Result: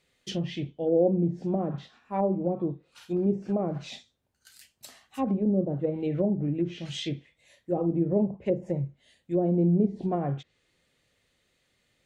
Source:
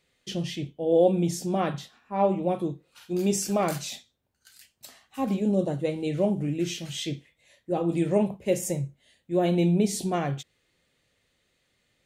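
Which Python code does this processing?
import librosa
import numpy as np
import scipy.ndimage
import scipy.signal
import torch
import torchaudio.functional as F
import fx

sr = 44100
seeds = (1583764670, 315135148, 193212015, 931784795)

y = fx.env_lowpass_down(x, sr, base_hz=510.0, full_db=-21.5)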